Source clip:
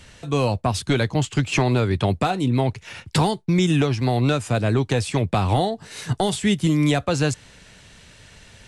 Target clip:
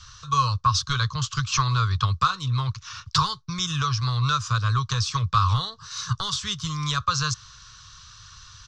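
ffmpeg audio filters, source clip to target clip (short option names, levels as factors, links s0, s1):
-af "firequalizer=gain_entry='entry(120,0);entry(210,-22);entry(320,-29);entry(470,-18);entry(740,-27);entry(1100,13);entry(2000,-12);entry(3700,4);entry(5900,9);entry(9000,-19)':delay=0.05:min_phase=1"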